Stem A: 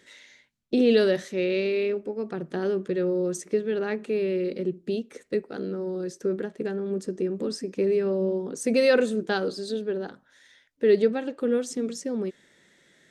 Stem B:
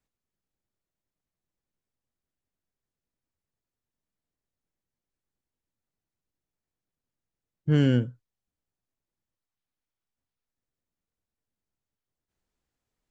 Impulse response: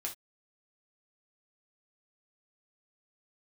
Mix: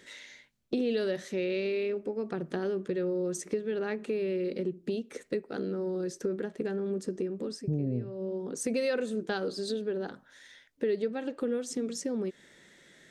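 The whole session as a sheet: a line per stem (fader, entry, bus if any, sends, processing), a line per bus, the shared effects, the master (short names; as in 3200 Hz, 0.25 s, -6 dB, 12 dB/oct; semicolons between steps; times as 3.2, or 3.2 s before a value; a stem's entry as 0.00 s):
+2.5 dB, 0.00 s, no send, auto duck -12 dB, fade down 0.50 s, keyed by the second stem
+2.5 dB, 0.00 s, no send, elliptic low-pass 710 Hz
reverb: off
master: compressor 3:1, threshold -31 dBFS, peak gain reduction 14 dB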